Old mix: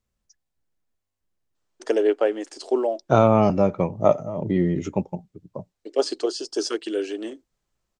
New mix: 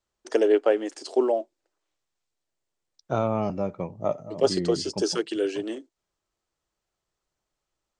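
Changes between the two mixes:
first voice: entry -1.55 s; second voice -9.0 dB

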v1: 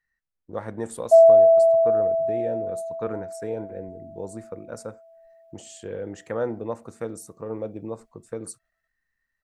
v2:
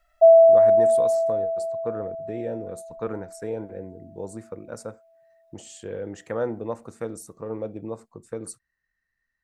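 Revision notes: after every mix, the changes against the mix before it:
background: entry -0.90 s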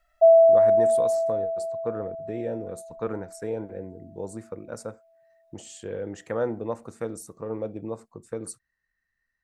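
background: send -7.0 dB

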